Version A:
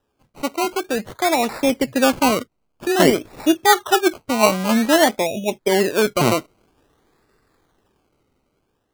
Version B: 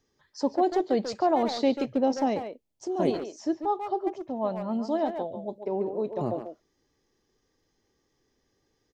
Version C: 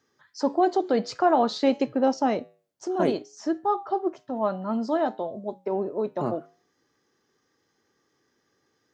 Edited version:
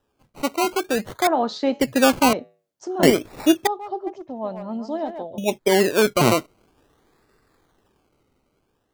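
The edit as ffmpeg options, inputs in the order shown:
-filter_complex "[2:a]asplit=2[s0][s1];[0:a]asplit=4[s2][s3][s4][s5];[s2]atrim=end=1.272[s6];[s0]atrim=start=1.268:end=1.802[s7];[s3]atrim=start=1.798:end=2.332[s8];[s1]atrim=start=2.328:end=3.032[s9];[s4]atrim=start=3.028:end=3.672[s10];[1:a]atrim=start=3.668:end=5.382[s11];[s5]atrim=start=5.378[s12];[s6][s7]acrossfade=d=0.004:c1=hsin:c2=hsin[s13];[s13][s8]acrossfade=d=0.004:c1=hsin:c2=hsin[s14];[s14][s9]acrossfade=d=0.004:c1=hsin:c2=hsin[s15];[s15][s10]acrossfade=d=0.004:c1=hsin:c2=hsin[s16];[s16][s11]acrossfade=d=0.004:c1=hsin:c2=hsin[s17];[s17][s12]acrossfade=d=0.004:c1=hsin:c2=hsin"

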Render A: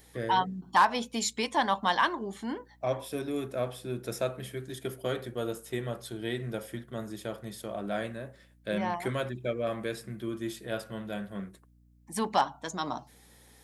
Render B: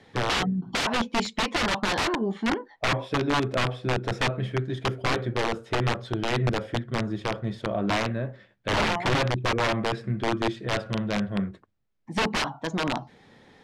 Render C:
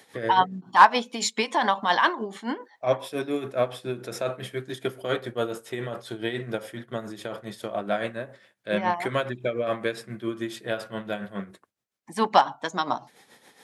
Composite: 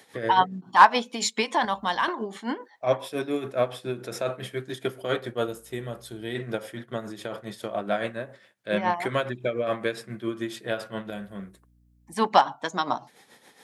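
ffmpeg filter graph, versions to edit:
-filter_complex "[0:a]asplit=3[s0][s1][s2];[2:a]asplit=4[s3][s4][s5][s6];[s3]atrim=end=1.652[s7];[s0]atrim=start=1.648:end=2.082[s8];[s4]atrim=start=2.078:end=5.482[s9];[s1]atrim=start=5.478:end=6.352[s10];[s5]atrim=start=6.348:end=11.102[s11];[s2]atrim=start=11.098:end=12.142[s12];[s6]atrim=start=12.138[s13];[s7][s8]acrossfade=d=0.004:c1=hsin:c2=hsin[s14];[s14][s9]acrossfade=d=0.004:c1=hsin:c2=hsin[s15];[s15][s10]acrossfade=d=0.004:c1=hsin:c2=hsin[s16];[s16][s11]acrossfade=d=0.004:c1=hsin:c2=hsin[s17];[s17][s12]acrossfade=d=0.004:c1=hsin:c2=hsin[s18];[s18][s13]acrossfade=d=0.004:c1=hsin:c2=hsin"

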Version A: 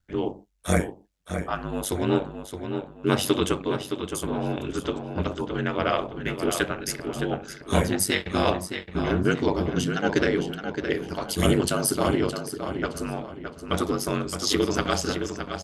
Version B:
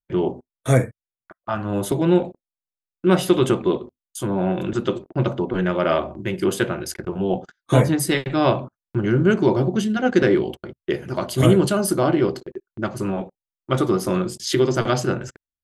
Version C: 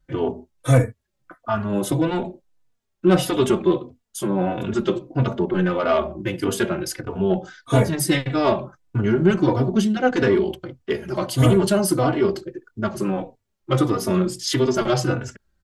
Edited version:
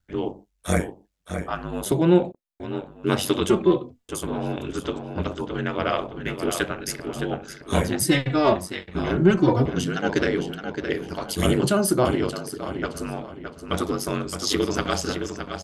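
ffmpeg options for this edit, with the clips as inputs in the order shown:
-filter_complex "[1:a]asplit=2[s0][s1];[2:a]asplit=3[s2][s3][s4];[0:a]asplit=6[s5][s6][s7][s8][s9][s10];[s5]atrim=end=1.862[s11];[s0]atrim=start=1.858:end=2.602[s12];[s6]atrim=start=2.598:end=3.492[s13];[s2]atrim=start=3.488:end=4.092[s14];[s7]atrim=start=4.088:end=8.022[s15];[s3]atrim=start=8.018:end=8.552[s16];[s8]atrim=start=8.548:end=9.172[s17];[s4]atrim=start=9.168:end=9.652[s18];[s9]atrim=start=9.648:end=11.632[s19];[s1]atrim=start=11.628:end=12.052[s20];[s10]atrim=start=12.048[s21];[s11][s12]acrossfade=d=0.004:c1=hsin:c2=hsin[s22];[s22][s13]acrossfade=d=0.004:c1=hsin:c2=hsin[s23];[s23][s14]acrossfade=d=0.004:c1=hsin:c2=hsin[s24];[s24][s15]acrossfade=d=0.004:c1=hsin:c2=hsin[s25];[s25][s16]acrossfade=d=0.004:c1=hsin:c2=hsin[s26];[s26][s17]acrossfade=d=0.004:c1=hsin:c2=hsin[s27];[s27][s18]acrossfade=d=0.004:c1=hsin:c2=hsin[s28];[s28][s19]acrossfade=d=0.004:c1=hsin:c2=hsin[s29];[s29][s20]acrossfade=d=0.004:c1=hsin:c2=hsin[s30];[s30][s21]acrossfade=d=0.004:c1=hsin:c2=hsin"

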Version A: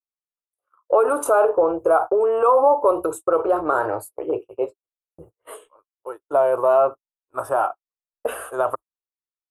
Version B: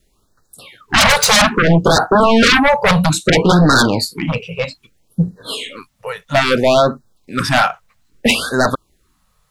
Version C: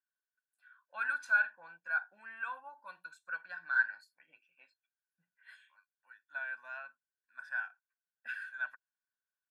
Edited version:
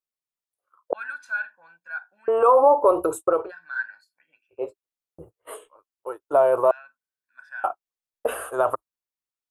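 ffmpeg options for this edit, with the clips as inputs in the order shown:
-filter_complex "[2:a]asplit=3[s0][s1][s2];[0:a]asplit=4[s3][s4][s5][s6];[s3]atrim=end=0.932[s7];[s0]atrim=start=0.928:end=2.282[s8];[s4]atrim=start=2.278:end=3.52[s9];[s1]atrim=start=3.28:end=4.74[s10];[s5]atrim=start=4.5:end=6.712[s11];[s2]atrim=start=6.708:end=7.642[s12];[s6]atrim=start=7.638[s13];[s7][s8]acrossfade=d=0.004:c1=hsin:c2=hsin[s14];[s14][s9]acrossfade=d=0.004:c1=hsin:c2=hsin[s15];[s15][s10]acrossfade=d=0.24:c1=tri:c2=tri[s16];[s16][s11]acrossfade=d=0.24:c1=tri:c2=tri[s17];[s17][s12]acrossfade=d=0.004:c1=hsin:c2=hsin[s18];[s18][s13]acrossfade=d=0.004:c1=hsin:c2=hsin"

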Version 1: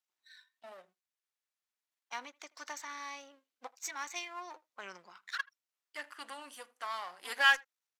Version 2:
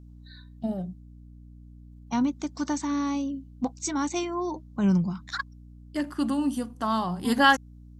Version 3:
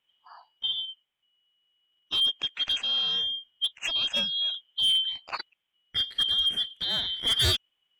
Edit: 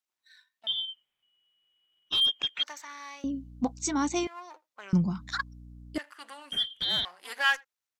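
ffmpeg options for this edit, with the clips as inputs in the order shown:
-filter_complex "[2:a]asplit=2[s0][s1];[1:a]asplit=2[s2][s3];[0:a]asplit=5[s4][s5][s6][s7][s8];[s4]atrim=end=0.672[s9];[s0]atrim=start=0.668:end=2.632[s10];[s5]atrim=start=2.628:end=3.242[s11];[s2]atrim=start=3.238:end=4.272[s12];[s6]atrim=start=4.268:end=4.932[s13];[s3]atrim=start=4.928:end=5.982[s14];[s7]atrim=start=5.978:end=6.522[s15];[s1]atrim=start=6.518:end=7.052[s16];[s8]atrim=start=7.048[s17];[s9][s10]acrossfade=d=0.004:c1=hsin:c2=hsin[s18];[s18][s11]acrossfade=d=0.004:c1=hsin:c2=hsin[s19];[s19][s12]acrossfade=d=0.004:c1=hsin:c2=hsin[s20];[s20][s13]acrossfade=d=0.004:c1=hsin:c2=hsin[s21];[s21][s14]acrossfade=d=0.004:c1=hsin:c2=hsin[s22];[s22][s15]acrossfade=d=0.004:c1=hsin:c2=hsin[s23];[s23][s16]acrossfade=d=0.004:c1=hsin:c2=hsin[s24];[s24][s17]acrossfade=d=0.004:c1=hsin:c2=hsin"

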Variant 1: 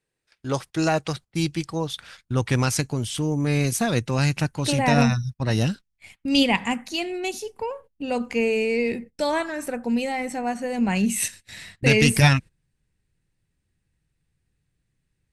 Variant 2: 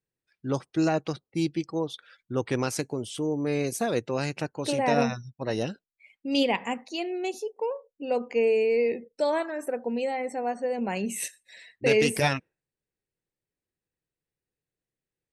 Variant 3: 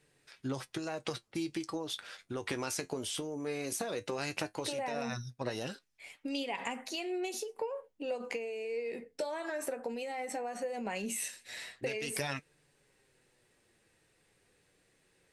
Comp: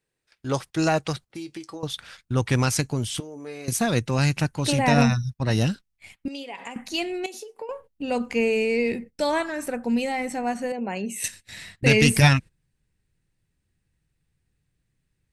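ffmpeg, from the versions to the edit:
-filter_complex "[2:a]asplit=4[s0][s1][s2][s3];[0:a]asplit=6[s4][s5][s6][s7][s8][s9];[s4]atrim=end=1.302[s10];[s0]atrim=start=1.298:end=1.832[s11];[s5]atrim=start=1.828:end=3.202[s12];[s1]atrim=start=3.198:end=3.682[s13];[s6]atrim=start=3.678:end=6.282[s14];[s2]atrim=start=6.278:end=6.762[s15];[s7]atrim=start=6.758:end=7.262[s16];[s3]atrim=start=7.258:end=7.692[s17];[s8]atrim=start=7.688:end=10.722[s18];[1:a]atrim=start=10.718:end=11.242[s19];[s9]atrim=start=11.238[s20];[s10][s11]acrossfade=d=0.004:c1=hsin:c2=hsin[s21];[s21][s12]acrossfade=d=0.004:c1=hsin:c2=hsin[s22];[s22][s13]acrossfade=d=0.004:c1=hsin:c2=hsin[s23];[s23][s14]acrossfade=d=0.004:c1=hsin:c2=hsin[s24];[s24][s15]acrossfade=d=0.004:c1=hsin:c2=hsin[s25];[s25][s16]acrossfade=d=0.004:c1=hsin:c2=hsin[s26];[s26][s17]acrossfade=d=0.004:c1=hsin:c2=hsin[s27];[s27][s18]acrossfade=d=0.004:c1=hsin:c2=hsin[s28];[s28][s19]acrossfade=d=0.004:c1=hsin:c2=hsin[s29];[s29][s20]acrossfade=d=0.004:c1=hsin:c2=hsin"

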